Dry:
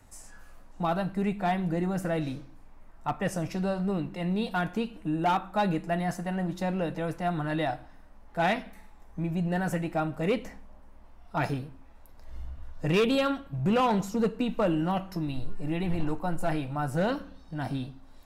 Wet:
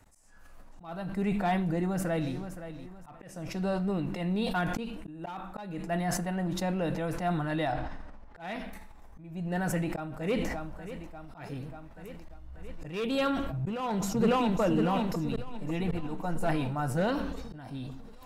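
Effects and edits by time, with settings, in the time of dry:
0:01.65–0:02.34: delay throw 520 ms, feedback 40%, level −12 dB
0:07.72–0:08.40: high-frequency loss of the air 84 metres
0:09.60–0:10.47: delay throw 590 ms, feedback 80%, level −15 dB
0:13.59–0:14.60: delay throw 550 ms, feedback 60%, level −5 dB
whole clip: volume swells 431 ms; level that may fall only so fast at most 33 dB per second; level −1.5 dB

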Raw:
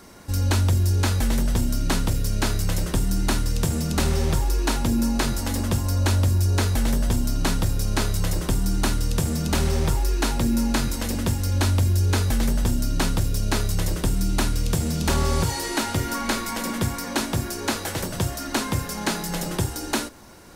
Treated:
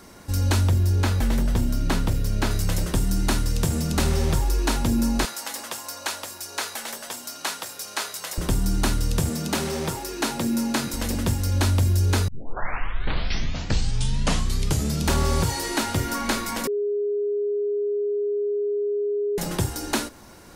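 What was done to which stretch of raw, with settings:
0:00.68–0:02.51: parametric band 9,200 Hz −6 dB 2.1 octaves
0:05.25–0:08.38: high-pass filter 750 Hz
0:09.29–0:10.94: high-pass filter 170 Hz
0:12.28: tape start 2.79 s
0:16.67–0:19.38: beep over 411 Hz −21.5 dBFS

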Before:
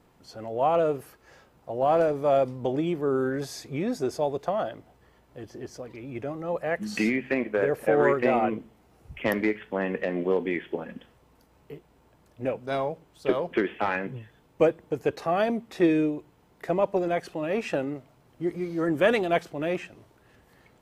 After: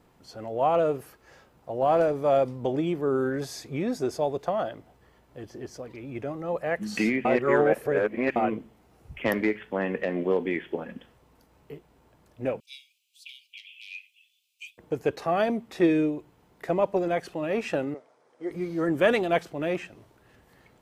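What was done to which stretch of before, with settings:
0:07.25–0:08.36: reverse
0:12.60–0:14.78: Butterworth high-pass 2,400 Hz 96 dB per octave
0:17.94–0:18.51: loudspeaker in its box 460–8,800 Hz, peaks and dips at 480 Hz +8 dB, 2,800 Hz −9 dB, 4,100 Hz −5 dB, 7,400 Hz −5 dB

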